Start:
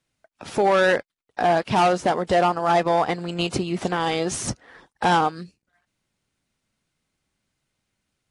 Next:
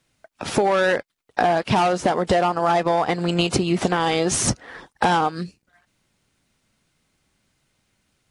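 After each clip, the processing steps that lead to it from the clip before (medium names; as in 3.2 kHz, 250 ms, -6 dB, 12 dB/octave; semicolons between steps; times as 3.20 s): compression 12:1, threshold -24 dBFS, peak gain reduction 10 dB; trim +8.5 dB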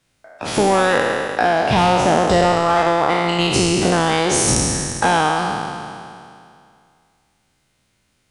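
spectral sustain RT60 2.35 s; peaking EQ 200 Hz -2 dB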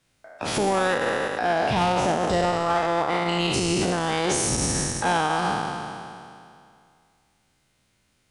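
peak limiter -11.5 dBFS, peak gain reduction 9.5 dB; trim -2.5 dB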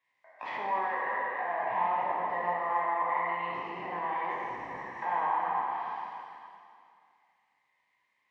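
low-pass that closes with the level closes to 1.5 kHz, closed at -22 dBFS; two resonant band-passes 1.4 kHz, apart 0.89 oct; plate-style reverb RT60 1.8 s, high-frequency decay 0.95×, DRR -2 dB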